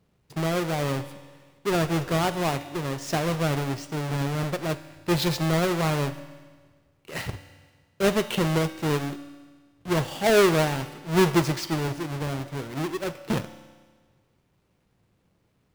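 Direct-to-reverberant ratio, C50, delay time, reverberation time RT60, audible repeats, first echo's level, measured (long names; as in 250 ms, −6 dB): 11.0 dB, 13.0 dB, no echo audible, 1.5 s, no echo audible, no echo audible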